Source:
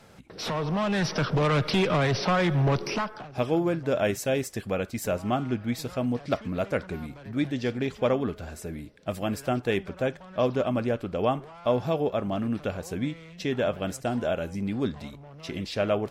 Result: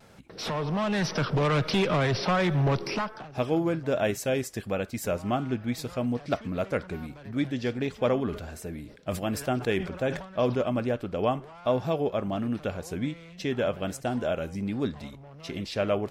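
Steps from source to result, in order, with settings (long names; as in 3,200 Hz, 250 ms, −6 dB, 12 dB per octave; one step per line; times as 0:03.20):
pitch vibrato 1.3 Hz 43 cents
0:08.00–0:10.58: level that may fall only so fast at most 100 dB per second
level −1 dB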